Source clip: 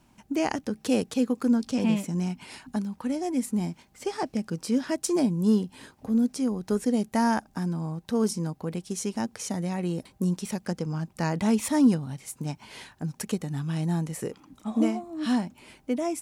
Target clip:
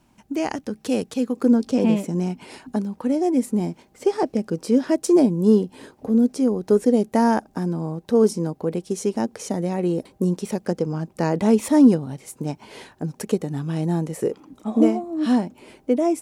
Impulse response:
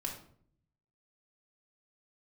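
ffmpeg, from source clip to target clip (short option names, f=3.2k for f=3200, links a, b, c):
-af "asetnsamples=n=441:p=0,asendcmd='1.36 equalizer g 11.5',equalizer=f=430:t=o:w=1.7:g=2.5"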